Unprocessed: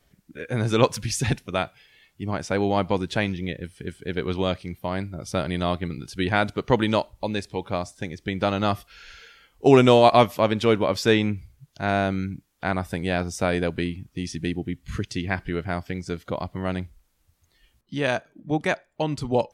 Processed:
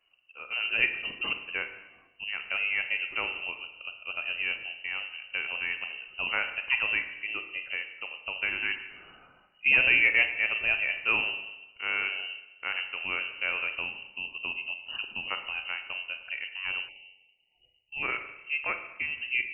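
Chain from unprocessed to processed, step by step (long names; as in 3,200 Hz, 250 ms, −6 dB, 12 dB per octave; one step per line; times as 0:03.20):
four-comb reverb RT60 0.99 s, combs from 33 ms, DRR 7.5 dB
voice inversion scrambler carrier 2,900 Hz
time-frequency box erased 0:16.89–0:18.02, 910–1,900 Hz
level −8 dB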